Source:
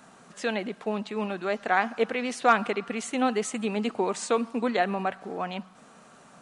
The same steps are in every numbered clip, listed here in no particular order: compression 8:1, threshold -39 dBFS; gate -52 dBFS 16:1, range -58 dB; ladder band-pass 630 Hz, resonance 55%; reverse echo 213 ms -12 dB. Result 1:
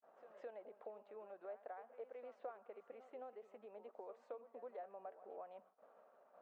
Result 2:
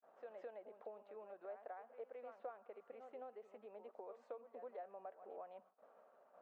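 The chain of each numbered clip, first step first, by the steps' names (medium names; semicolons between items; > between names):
compression > reverse echo > gate > ladder band-pass; reverse echo > compression > gate > ladder band-pass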